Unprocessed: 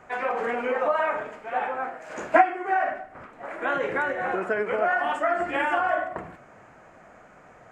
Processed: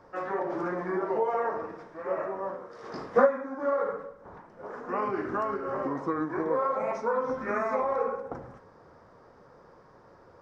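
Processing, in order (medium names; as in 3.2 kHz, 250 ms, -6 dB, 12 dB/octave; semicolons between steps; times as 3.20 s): speed mistake 45 rpm record played at 33 rpm; trim -4 dB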